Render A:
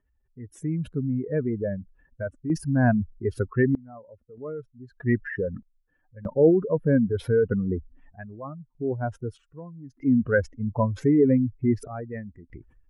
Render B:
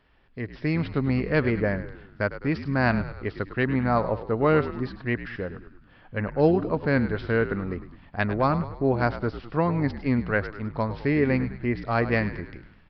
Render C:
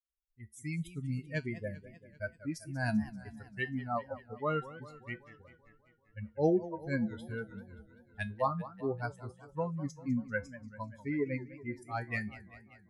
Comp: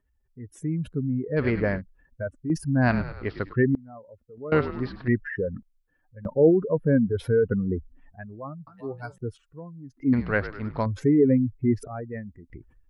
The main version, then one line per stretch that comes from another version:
A
1.39–1.79 from B, crossfade 0.06 s
2.86–3.52 from B, crossfade 0.10 s
4.52–5.08 from B
8.67–9.18 from C
10.13–10.86 from B

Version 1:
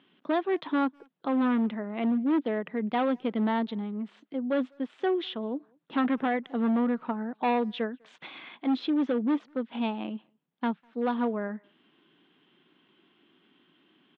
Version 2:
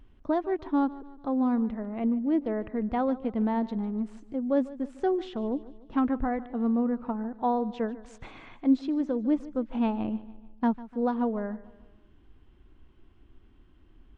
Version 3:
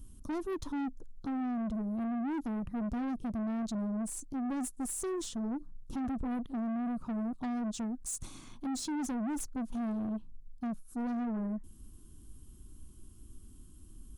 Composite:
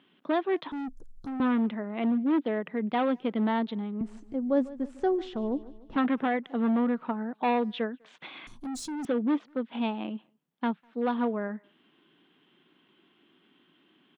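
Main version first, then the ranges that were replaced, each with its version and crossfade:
1
0.72–1.4 from 3
4.01–5.96 from 2
8.47–9.05 from 3

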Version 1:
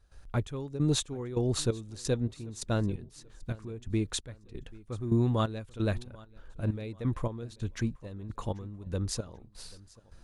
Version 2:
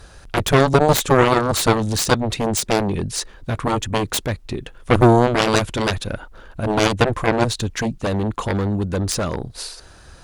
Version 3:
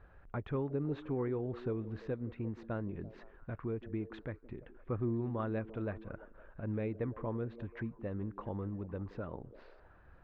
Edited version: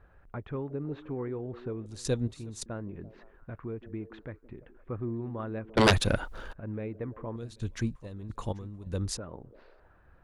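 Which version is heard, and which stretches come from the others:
3
1.86–2.66 from 1
5.77–6.53 from 2
7.36–9.17 from 1

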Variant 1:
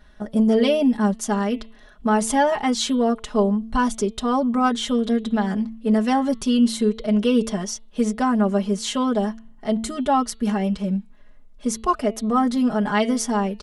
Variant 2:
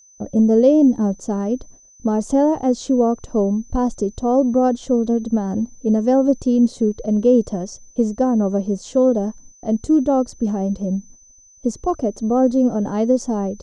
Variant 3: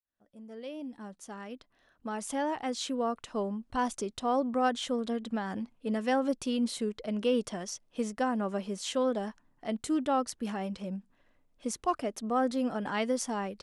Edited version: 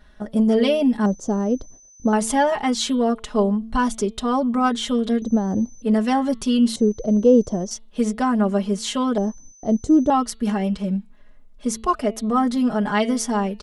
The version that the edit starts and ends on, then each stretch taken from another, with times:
1
1.06–2.13 from 2
5.22–5.82 from 2
6.76–7.71 from 2
9.18–10.1 from 2
not used: 3

